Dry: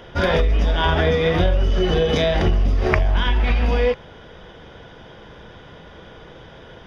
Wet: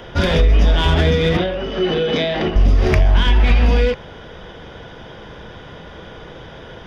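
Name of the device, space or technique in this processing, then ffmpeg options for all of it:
one-band saturation: -filter_complex "[0:a]acrossover=split=370|2400[link_01][link_02][link_03];[link_02]asoftclip=type=tanh:threshold=-27.5dB[link_04];[link_01][link_04][link_03]amix=inputs=3:normalize=0,asettb=1/sr,asplit=3[link_05][link_06][link_07];[link_05]atrim=end=1.374[link_08];[link_06]atrim=start=1.37:end=2.56,asetpts=PTS-STARTPTS,afade=type=in:duration=0.004:curve=qsin,afade=type=out:start_time=1.186:duration=0.004:curve=qsin,acrossover=split=180 4400:gain=0.0891 1 0.112[link_09][link_10][link_11];[link_09][link_10][link_11]amix=inputs=3:normalize=0[link_12];[link_07]atrim=start=2.556[link_13];[link_08][link_12]acrossfade=duration=0.004:curve1=hsin:curve2=qsin[link_14];[link_14][link_13]acrossfade=duration=0.004:curve1=qsin:curve2=hsin,volume=5.5dB"

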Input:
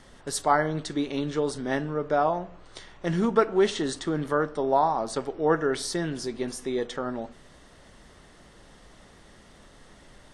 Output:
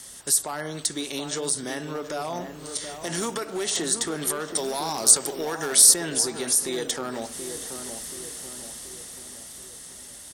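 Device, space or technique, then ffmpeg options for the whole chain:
FM broadcast chain: -filter_complex "[0:a]highpass=52,dynaudnorm=framelen=210:gausssize=21:maxgain=9dB,acrossover=split=360|1900[link_01][link_02][link_03];[link_01]acompressor=threshold=-33dB:ratio=4[link_04];[link_02]acompressor=threshold=-24dB:ratio=4[link_05];[link_03]acompressor=threshold=-40dB:ratio=4[link_06];[link_04][link_05][link_06]amix=inputs=3:normalize=0,aemphasis=mode=production:type=75fm,alimiter=limit=-19.5dB:level=0:latency=1:release=78,asoftclip=type=hard:threshold=-22.5dB,lowpass=frequency=15000:width=0.5412,lowpass=frequency=15000:width=1.3066,aemphasis=mode=production:type=75fm,asettb=1/sr,asplit=3[link_07][link_08][link_09];[link_07]atrim=end=4.564[link_10];[link_08]atrim=start=4.56:end=5.94,asetpts=PTS-STARTPTS,afade=type=in:duration=0.004:curve=qsin,afade=type=out:start_time=1.376:duration=0.004:curve=qsin,highshelf=frequency=3500:gain=8.5[link_11];[link_09]atrim=start=5.936[link_12];[link_10][link_11]acrossfade=duration=0.004:curve1=hsin:curve2=qsin[link_13];[link_13][link_12]acrossfade=duration=0.004:curve1=qsin:curve2=hsin,asplit=2[link_14][link_15];[link_15]adelay=729,lowpass=frequency=1100:poles=1,volume=-7.5dB,asplit=2[link_16][link_17];[link_17]adelay=729,lowpass=frequency=1100:poles=1,volume=0.53,asplit=2[link_18][link_19];[link_19]adelay=729,lowpass=frequency=1100:poles=1,volume=0.53,asplit=2[link_20][link_21];[link_21]adelay=729,lowpass=frequency=1100:poles=1,volume=0.53,asplit=2[link_22][link_23];[link_23]adelay=729,lowpass=frequency=1100:poles=1,volume=0.53,asplit=2[link_24][link_25];[link_25]adelay=729,lowpass=frequency=1100:poles=1,volume=0.53[link_26];[link_14][link_16][link_18][link_20][link_22][link_24][link_26]amix=inputs=7:normalize=0,volume=-1dB"

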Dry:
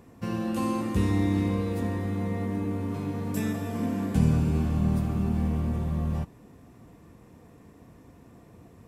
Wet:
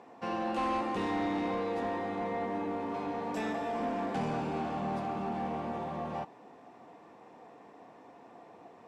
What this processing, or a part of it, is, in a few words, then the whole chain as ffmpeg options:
intercom: -af "highpass=370,lowpass=4300,equalizer=frequency=790:width_type=o:width=0.55:gain=10.5,asoftclip=type=tanh:threshold=-28dB,volume=1.5dB"

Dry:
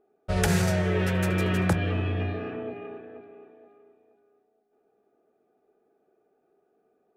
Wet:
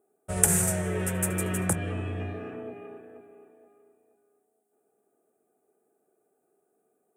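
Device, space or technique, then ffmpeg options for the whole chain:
budget condenser microphone: -af "highpass=73,highshelf=frequency=6300:width_type=q:width=3:gain=13,volume=-4dB"

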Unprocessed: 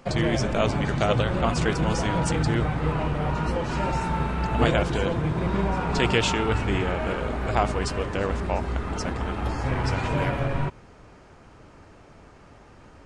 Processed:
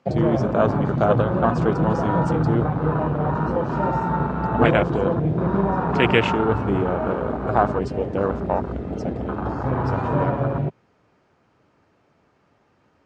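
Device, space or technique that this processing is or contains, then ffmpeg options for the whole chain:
over-cleaned archive recording: -af "highpass=110,lowpass=6000,afwtdn=0.0447,volume=5.5dB"

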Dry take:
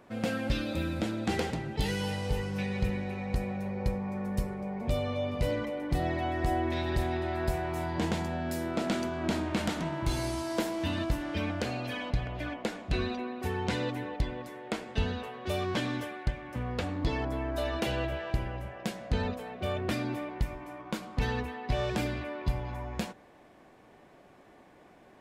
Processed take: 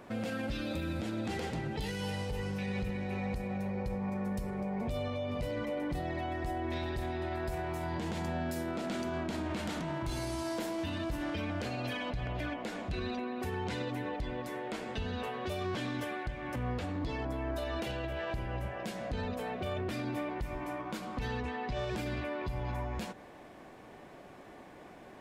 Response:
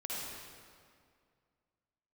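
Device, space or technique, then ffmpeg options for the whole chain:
stacked limiters: -filter_complex "[0:a]asettb=1/sr,asplit=3[link_01][link_02][link_03];[link_01]atrim=end=21.384[link_04];[link_02]atrim=start=21.38:end=21.79,asetpts=PTS-STARTPTS,afade=type=in:duration=0.004:curve=qsin,afade=type=out:start_time=0.406:duration=0.004:curve=qsin,lowpass=frequency=8100:width=0.5412,lowpass=frequency=8100:width=1.3066[link_05];[link_03]atrim=start=21.786[link_06];[link_04][link_05]acrossfade=duration=0.004:curve1=hsin:curve2=qsin[link_07];[link_07][link_06]acrossfade=duration=0.004:curve1=qsin:curve2=hsin,alimiter=limit=-24dB:level=0:latency=1:release=223,alimiter=level_in=3.5dB:limit=-24dB:level=0:latency=1:release=28,volume=-3.5dB,alimiter=level_in=9dB:limit=-24dB:level=0:latency=1:release=139,volume=-9dB,volume=5dB"

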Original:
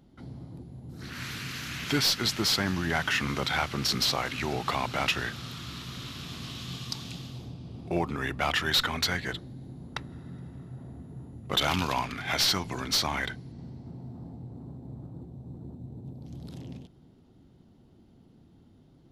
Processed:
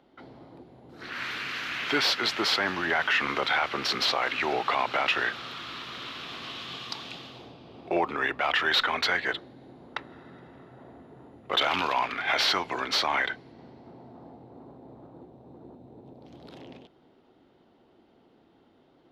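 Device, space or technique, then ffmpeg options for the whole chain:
DJ mixer with the lows and highs turned down: -filter_complex "[0:a]acrossover=split=350 3800:gain=0.0794 1 0.112[link_01][link_02][link_03];[link_01][link_02][link_03]amix=inputs=3:normalize=0,alimiter=limit=-22dB:level=0:latency=1:release=21,volume=7dB"

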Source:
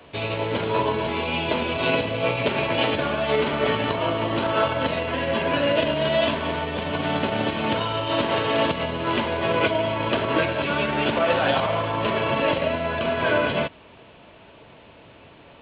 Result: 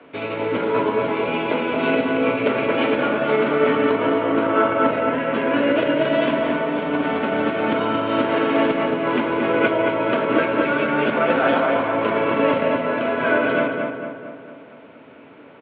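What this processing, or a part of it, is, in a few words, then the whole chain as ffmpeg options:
kitchen radio: -filter_complex "[0:a]asettb=1/sr,asplit=3[link_01][link_02][link_03];[link_01]atrim=end=4.214[link_04];[link_02]atrim=start=4.21:end=5.34,asetpts=PTS-STARTPTS,afade=type=in:duration=0.004:curve=qsin,afade=type=out:start_time=1.126:duration=0.004:curve=qsin,acrossover=split=3600[link_05][link_06];[link_06]acompressor=threshold=-54dB:ratio=4:attack=1:release=60[link_07];[link_05][link_07]amix=inputs=2:normalize=0[link_08];[link_03]atrim=start=5.336[link_09];[link_04][link_08]acrossfade=duration=0.004:curve1=hsin:curve2=qsin[link_10];[link_10][link_09]acrossfade=duration=0.004:curve1=qsin:curve2=hsin,highpass=180,equalizer=frequency=270:width_type=q:width=4:gain=9,equalizer=frequency=460:width_type=q:width=4:gain=4,equalizer=frequency=1400:width_type=q:width=4:gain=9,equalizer=frequency=2200:width_type=q:width=4:gain=7,lowpass=frequency=4300:width=0.5412,lowpass=frequency=4300:width=1.3066,highshelf=frequency=2100:gain=-9.5,asplit=2[link_11][link_12];[link_12]adelay=226,lowpass=frequency=2300:poles=1,volume=-3.5dB,asplit=2[link_13][link_14];[link_14]adelay=226,lowpass=frequency=2300:poles=1,volume=0.55,asplit=2[link_15][link_16];[link_16]adelay=226,lowpass=frequency=2300:poles=1,volume=0.55,asplit=2[link_17][link_18];[link_18]adelay=226,lowpass=frequency=2300:poles=1,volume=0.55,asplit=2[link_19][link_20];[link_20]adelay=226,lowpass=frequency=2300:poles=1,volume=0.55,asplit=2[link_21][link_22];[link_22]adelay=226,lowpass=frequency=2300:poles=1,volume=0.55,asplit=2[link_23][link_24];[link_24]adelay=226,lowpass=frequency=2300:poles=1,volume=0.55,asplit=2[link_25][link_26];[link_26]adelay=226,lowpass=frequency=2300:poles=1,volume=0.55[link_27];[link_11][link_13][link_15][link_17][link_19][link_21][link_23][link_25][link_27]amix=inputs=9:normalize=0"

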